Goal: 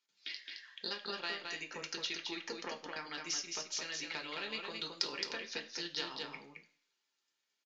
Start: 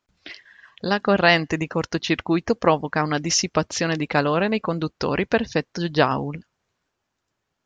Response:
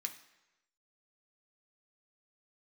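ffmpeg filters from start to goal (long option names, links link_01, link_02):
-filter_complex "[0:a]acrossover=split=120|2300[link_01][link_02][link_03];[link_01]acrusher=bits=2:mix=0:aa=0.5[link_04];[link_04][link_02][link_03]amix=inputs=3:normalize=0,tiltshelf=frequency=1100:gain=-7.5,acompressor=threshold=-28dB:ratio=6,aeval=exprs='0.355*(cos(1*acos(clip(val(0)/0.355,-1,1)))-cos(1*PI/2))+0.0398*(cos(3*acos(clip(val(0)/0.355,-1,1)))-cos(3*PI/2))+0.00794*(cos(4*acos(clip(val(0)/0.355,-1,1)))-cos(4*PI/2))':channel_layout=same,asettb=1/sr,asplit=3[link_05][link_06][link_07];[link_05]atrim=end=4.284[link_08];[link_06]atrim=start=4.28:end=5.05,asetpts=PTS-STARTPTS,afade=type=in:duration=0.004:curve=qsin,afade=type=out:start_time=0.766:duration=0.004:curve=qsin,aemphasis=mode=production:type=50kf[link_09];[link_07]atrim=start=5.046[link_10];[link_08][link_09]acrossfade=duration=0.004:curve1=hsin:curve2=qsin[link_11];[link_11][link_10]acrossfade=duration=0.004:curve1=qsin:curve2=hsin,aecho=1:1:217:0.596[link_12];[1:a]atrim=start_sample=2205,asetrate=83790,aresample=44100[link_13];[link_12][link_13]afir=irnorm=-1:irlink=0,aresample=16000,aresample=44100,volume=2.5dB"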